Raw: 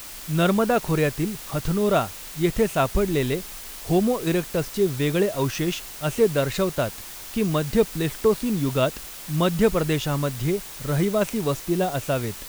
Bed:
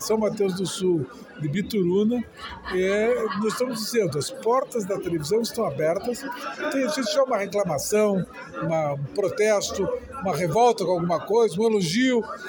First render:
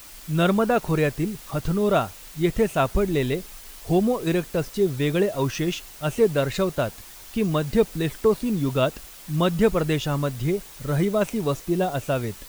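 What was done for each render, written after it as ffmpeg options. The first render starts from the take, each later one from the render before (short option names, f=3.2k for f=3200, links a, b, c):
-af "afftdn=nr=6:nf=-39"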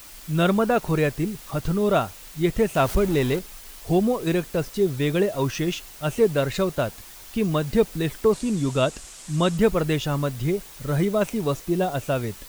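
-filter_complex "[0:a]asettb=1/sr,asplit=3[a][b][c];[a]atrim=end=2.754[d];[b]atrim=start=2.75:end=3.39,asetpts=PTS-STARTPTS,afade=t=in:d=0.004:c=qsin,afade=t=out:st=0.636:d=0.004:c=qsin,aeval=exprs='val(0)+0.5*0.0335*sgn(val(0))':c=same[e];[c]atrim=start=3.386[f];[d][e]acrossfade=d=0.004:c1=hsin:c2=qsin[g];[g][f]acrossfade=d=0.004:c1=qsin:c2=hsin,asettb=1/sr,asplit=3[h][i][j];[h]atrim=end=8.334[k];[i]atrim=start=8.33:end=9.58,asetpts=PTS-STARTPTS,afade=t=in:d=0.004:c=qsin,afade=t=out:st=1.246:d=0.004:c=qsin,lowpass=f=7.9k:t=q:w=2.7[l];[j]atrim=start=9.576[m];[k][l]acrossfade=d=0.004:c1=hsin:c2=qsin[n];[n][m]acrossfade=d=0.004:c1=qsin:c2=hsin"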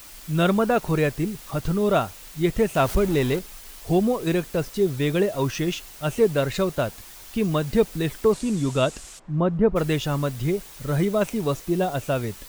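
-filter_complex "[0:a]asplit=3[a][b][c];[a]afade=t=out:st=9.18:d=0.02[d];[b]lowpass=1.1k,afade=t=in:st=9.18:d=0.02,afade=t=out:st=9.75:d=0.02[e];[c]afade=t=in:st=9.75:d=0.02[f];[d][e][f]amix=inputs=3:normalize=0"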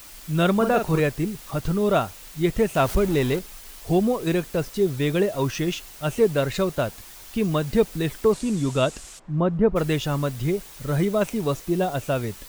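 -filter_complex "[0:a]asettb=1/sr,asplit=3[a][b][c];[a]atrim=end=0.564[d];[b]atrim=start=0.56:end=1,asetpts=PTS-STARTPTS,afade=t=in:d=0.004:c=qsin,afade=t=out:st=0.436:d=0.004:c=qsin,asplit=2[e][f];[f]adelay=44,volume=-6.5dB[g];[e][g]amix=inputs=2:normalize=0,atrim=end_sample=19404[h];[c]atrim=start=0.996[i];[d][h]acrossfade=d=0.004:c1=hsin:c2=qsin[j];[j][i]acrossfade=d=0.004:c1=qsin:c2=hsin"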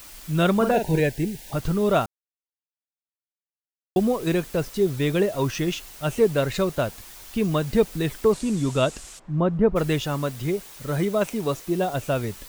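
-filter_complex "[0:a]asettb=1/sr,asplit=3[a][b][c];[a]atrim=end=0.714[d];[b]atrim=start=0.71:end=1.53,asetpts=PTS-STARTPTS,afade=t=in:d=0.004:c=qsin,afade=t=out:st=0.816:d=0.004:c=qsin,asuperstop=centerf=1200:order=8:qfactor=2.2[e];[c]atrim=start=1.526[f];[d][e]acrossfade=d=0.004:c1=hsin:c2=qsin[g];[g][f]acrossfade=d=0.004:c1=qsin:c2=hsin,asettb=1/sr,asplit=3[h][i][j];[h]atrim=end=10.034[k];[i]atrim=start=10.03:end=11.94,asetpts=PTS-STARTPTS,afade=t=in:d=0.004:c=qsin,afade=t=out:st=1.906:d=0.004:c=qsin,lowshelf=f=110:g=-8.5[l];[j]atrim=start=11.936[m];[k][l]acrossfade=d=0.004:c1=hsin:c2=qsin[n];[n][m]acrossfade=d=0.004:c1=qsin:c2=hsin,asplit=3[o][p][q];[o]atrim=end=2.06,asetpts=PTS-STARTPTS,afade=t=out:st=2.056:d=0.004:c=hsin[r];[p]atrim=start=2.06:end=3.96,asetpts=PTS-STARTPTS,volume=0[s];[q]atrim=start=3.96,asetpts=PTS-STARTPTS,afade=t=in:d=0.004:c=hsin[t];[r][s][t]concat=n=3:v=0:a=1"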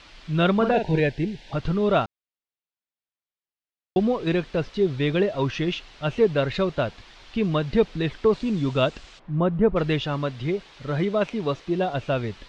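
-af "lowpass=f=3.9k:w=0.5412,lowpass=f=3.9k:w=1.3066,aemphasis=mode=production:type=cd"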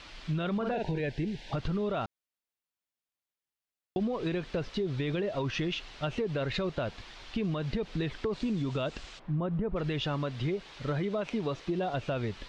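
-af "alimiter=limit=-18.5dB:level=0:latency=1:release=39,acompressor=threshold=-28dB:ratio=6"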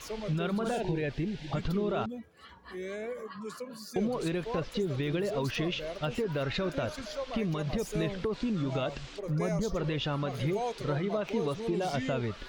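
-filter_complex "[1:a]volume=-16dB[a];[0:a][a]amix=inputs=2:normalize=0"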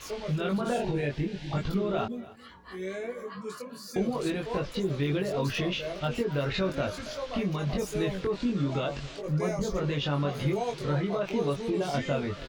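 -filter_complex "[0:a]asplit=2[a][b];[b]adelay=21,volume=-2dB[c];[a][c]amix=inputs=2:normalize=0,aecho=1:1:279:0.112"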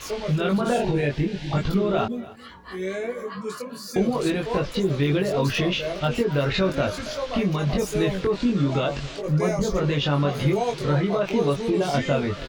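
-af "volume=6.5dB"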